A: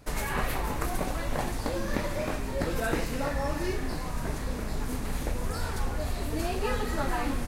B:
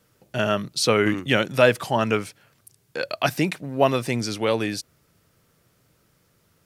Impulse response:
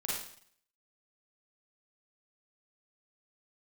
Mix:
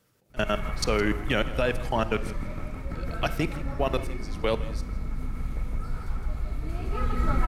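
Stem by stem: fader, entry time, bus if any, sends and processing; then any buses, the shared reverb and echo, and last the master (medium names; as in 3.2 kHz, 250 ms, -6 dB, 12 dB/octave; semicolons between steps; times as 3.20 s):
-4.5 dB, 0.30 s, no send, echo send -11 dB, tone controls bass +12 dB, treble -6 dB; small resonant body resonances 1.3/2.2 kHz, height 16 dB, ringing for 50 ms; auto duck -9 dB, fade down 0.30 s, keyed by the second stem
-3.0 dB, 0.00 s, send -18 dB, echo send -16.5 dB, level held to a coarse grid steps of 22 dB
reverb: on, RT60 0.60 s, pre-delay 36 ms
echo: delay 163 ms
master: none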